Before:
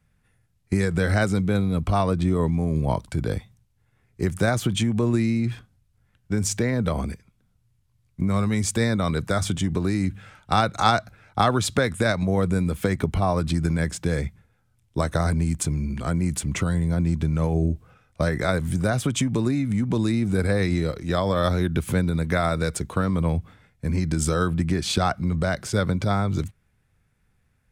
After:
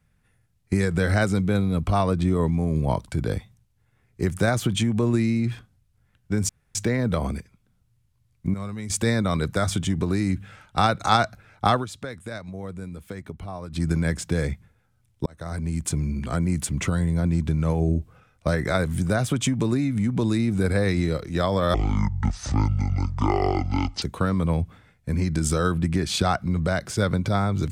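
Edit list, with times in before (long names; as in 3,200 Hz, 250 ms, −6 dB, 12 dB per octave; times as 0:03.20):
0:06.49: splice in room tone 0.26 s
0:08.28–0:08.64: clip gain −10 dB
0:11.47–0:13.58: duck −13 dB, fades 0.13 s
0:15.00–0:15.71: fade in
0:21.48–0:22.78: play speed 57%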